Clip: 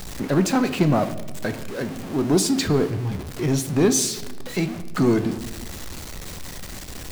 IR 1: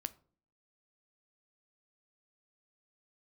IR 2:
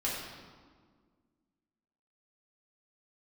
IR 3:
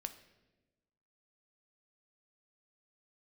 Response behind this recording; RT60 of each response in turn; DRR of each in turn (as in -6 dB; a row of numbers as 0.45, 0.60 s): 3; 0.50, 1.7, 1.1 s; 12.5, -7.0, 8.5 dB